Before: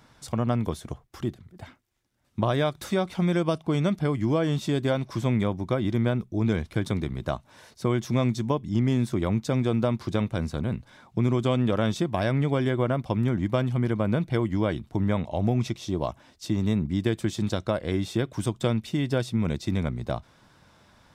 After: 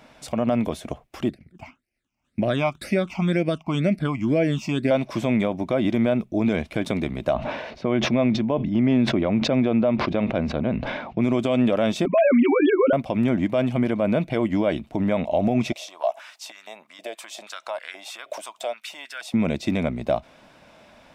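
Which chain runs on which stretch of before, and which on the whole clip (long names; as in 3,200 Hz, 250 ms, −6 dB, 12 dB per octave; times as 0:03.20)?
0:01.29–0:04.91: noise gate −49 dBFS, range −6 dB + all-pass phaser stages 8, 2 Hz, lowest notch 480–1,100 Hz
0:07.33–0:11.22: high-frequency loss of the air 250 metres + level that may fall only so fast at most 46 dB per second
0:12.05–0:12.93: three sine waves on the formant tracks + comb filter 7.5 ms, depth 97%
0:15.72–0:19.34: high-shelf EQ 3,200 Hz +10.5 dB + downward compressor 3 to 1, threshold −40 dBFS + high-pass on a step sequencer 6.3 Hz 610–1,500 Hz
whole clip: graphic EQ with 15 bands 100 Hz −8 dB, 250 Hz +6 dB, 630 Hz +12 dB, 2,500 Hz +10 dB; brickwall limiter −13 dBFS; level +1.5 dB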